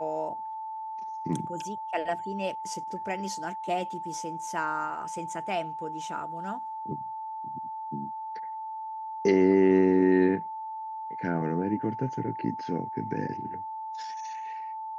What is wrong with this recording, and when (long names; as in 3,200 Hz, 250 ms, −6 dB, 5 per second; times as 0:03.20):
whistle 880 Hz −34 dBFS